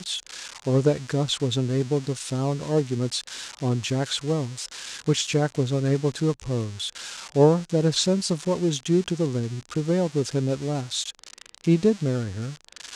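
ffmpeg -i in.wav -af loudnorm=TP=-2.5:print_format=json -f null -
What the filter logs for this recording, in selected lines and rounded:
"input_i" : "-25.1",
"input_tp" : "-5.4",
"input_lra" : "3.0",
"input_thresh" : "-35.4",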